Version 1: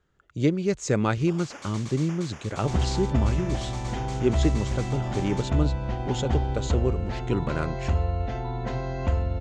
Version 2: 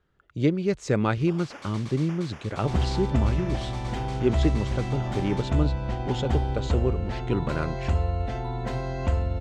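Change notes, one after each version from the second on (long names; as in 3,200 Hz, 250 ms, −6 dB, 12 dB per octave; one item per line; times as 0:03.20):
second sound: remove moving average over 5 samples
master: add parametric band 6,900 Hz −9.5 dB 0.56 octaves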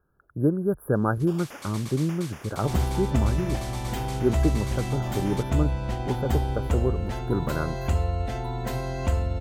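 speech: add linear-phase brick-wall band-stop 1,700–10,000 Hz
master: remove high-frequency loss of the air 99 metres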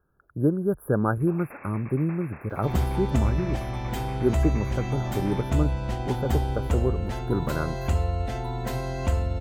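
first sound: add linear-phase brick-wall low-pass 2,700 Hz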